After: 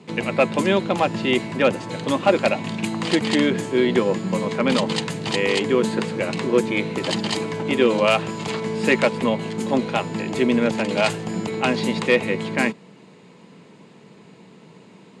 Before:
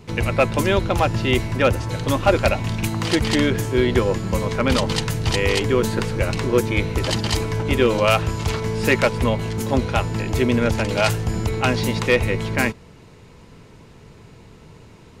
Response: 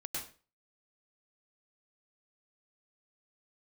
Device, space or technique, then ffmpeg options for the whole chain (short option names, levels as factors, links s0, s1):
television speaker: -af "highpass=f=170:w=0.5412,highpass=f=170:w=1.3066,equalizer=f=190:t=q:w=4:g=6,equalizer=f=1400:t=q:w=4:g=-4,equalizer=f=5700:t=q:w=4:g=-8,lowpass=f=8800:w=0.5412,lowpass=f=8800:w=1.3066"